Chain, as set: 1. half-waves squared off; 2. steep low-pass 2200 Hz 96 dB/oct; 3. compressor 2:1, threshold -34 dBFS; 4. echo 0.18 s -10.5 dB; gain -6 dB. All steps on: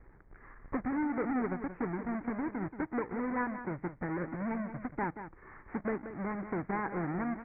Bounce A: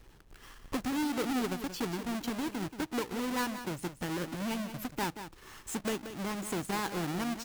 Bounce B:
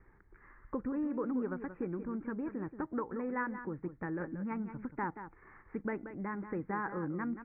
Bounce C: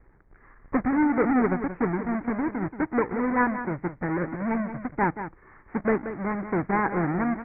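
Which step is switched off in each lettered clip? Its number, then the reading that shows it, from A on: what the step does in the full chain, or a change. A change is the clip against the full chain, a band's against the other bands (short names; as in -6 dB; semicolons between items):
2, crest factor change -2.5 dB; 1, distortion -5 dB; 3, mean gain reduction 7.0 dB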